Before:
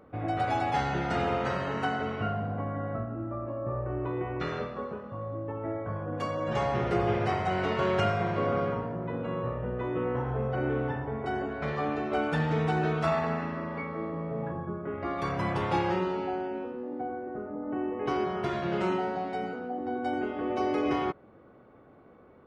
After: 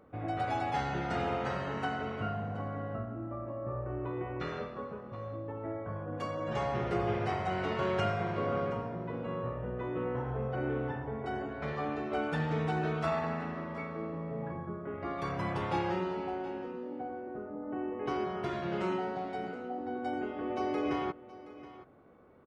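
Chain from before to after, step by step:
single-tap delay 723 ms −17 dB
level −4.5 dB

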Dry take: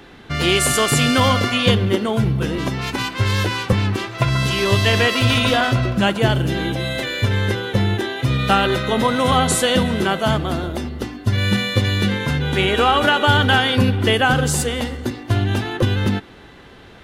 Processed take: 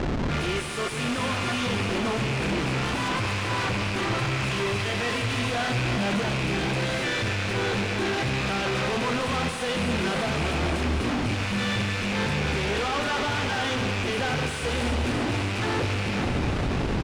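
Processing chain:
loose part that buzzes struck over −21 dBFS, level −8 dBFS
high shelf with overshoot 7,300 Hz +11 dB, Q 3
soft clipping −16.5 dBFS, distortion −7 dB
flanger 2 Hz, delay 9.7 ms, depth 6.3 ms, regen −72%
comparator with hysteresis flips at −44 dBFS
high-frequency loss of the air 120 metres
double-tracking delay 25 ms −11 dB
delay with a high-pass on its return 289 ms, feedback 83%, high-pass 1,600 Hz, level −8.5 dB
convolution reverb RT60 1.8 s, pre-delay 115 ms, DRR 8.5 dB

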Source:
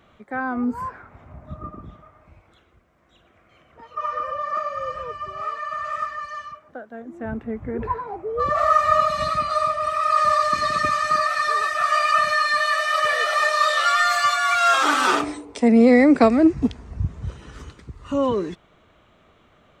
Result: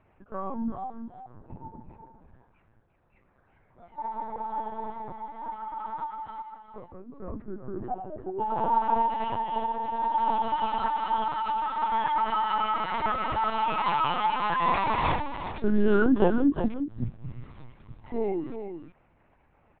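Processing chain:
on a send: single-tap delay 364 ms −8.5 dB
on the sum: pitch shifter −6.5 semitones
frequency shifter +62 Hz
linear-prediction vocoder at 8 kHz pitch kept
level −7 dB

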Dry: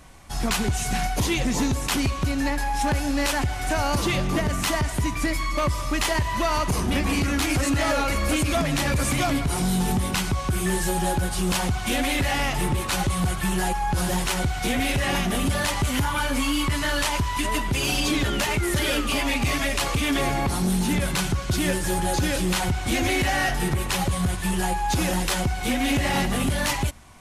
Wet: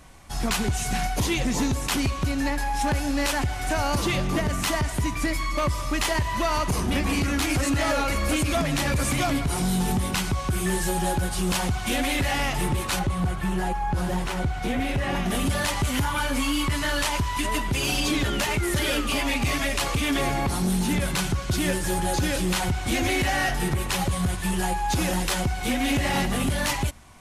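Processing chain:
0:12.99–0:15.26: high-shelf EQ 2,900 Hz −11.5 dB
level −1 dB

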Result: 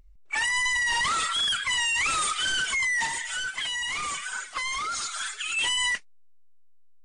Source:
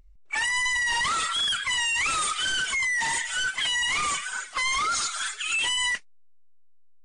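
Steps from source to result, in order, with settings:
0:03.05–0:05.57: downward compressor, threshold −28 dBFS, peak gain reduction 5 dB

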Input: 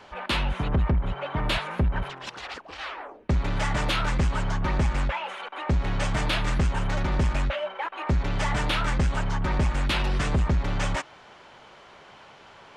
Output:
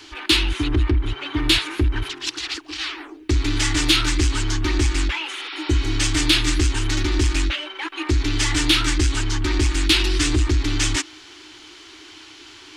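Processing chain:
drawn EQ curve 110 Hz 0 dB, 180 Hz −29 dB, 310 Hz +15 dB, 540 Hz −18 dB, 780 Hz −10 dB, 4,500 Hz +12 dB
in parallel at −10 dB: hard clipping −17.5 dBFS, distortion −17 dB
on the sum: healed spectral selection 0:05.41–0:05.92, 1,000–5,700 Hz
level +2 dB

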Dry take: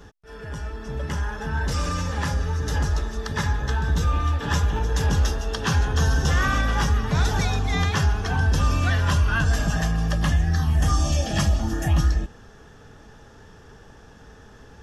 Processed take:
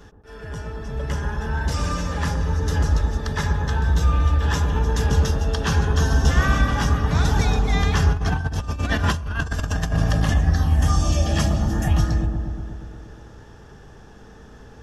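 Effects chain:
delay with a low-pass on its return 119 ms, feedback 72%, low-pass 830 Hz, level −3 dB
0:08.12–0:10.35: compressor whose output falls as the input rises −21 dBFS, ratio −0.5

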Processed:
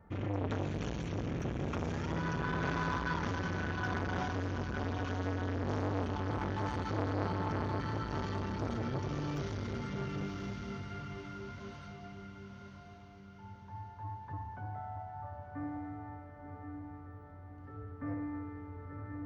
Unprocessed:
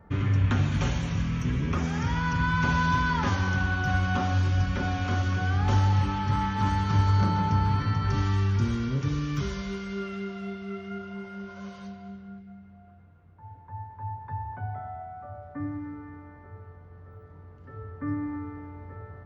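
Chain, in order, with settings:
feedback delay with all-pass diffusion 999 ms, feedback 43%, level −5.5 dB
saturating transformer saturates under 840 Hz
level −6 dB

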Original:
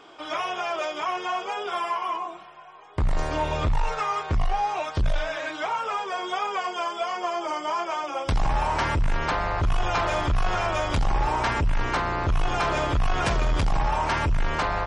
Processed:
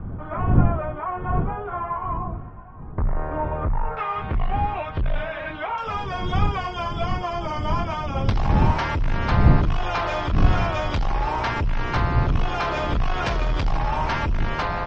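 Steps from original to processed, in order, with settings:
wind on the microphone 120 Hz −25 dBFS
low-pass filter 1,600 Hz 24 dB per octave, from 0:03.97 3,000 Hz, from 0:05.78 5,500 Hz

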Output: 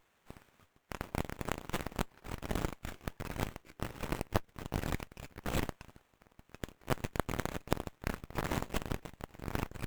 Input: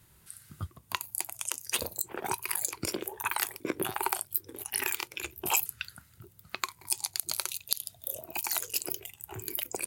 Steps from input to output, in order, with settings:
first-order pre-emphasis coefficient 0.97
windowed peak hold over 9 samples
level −6 dB

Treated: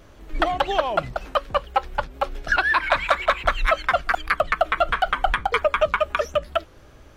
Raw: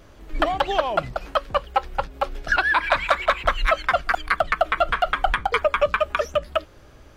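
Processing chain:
notch filter 4,800 Hz, Q 27
wow of a warped record 78 rpm, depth 100 cents

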